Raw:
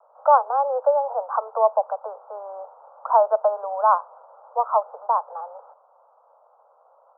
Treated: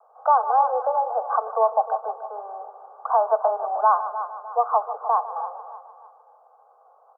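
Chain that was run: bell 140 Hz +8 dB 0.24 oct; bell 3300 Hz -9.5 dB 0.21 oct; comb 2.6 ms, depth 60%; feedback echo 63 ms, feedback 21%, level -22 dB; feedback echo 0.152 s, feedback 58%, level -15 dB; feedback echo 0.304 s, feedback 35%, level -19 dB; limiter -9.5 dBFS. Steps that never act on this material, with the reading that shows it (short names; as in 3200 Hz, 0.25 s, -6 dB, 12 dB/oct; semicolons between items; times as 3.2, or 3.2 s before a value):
bell 140 Hz: input band starts at 400 Hz; bell 3300 Hz: input band ends at 1500 Hz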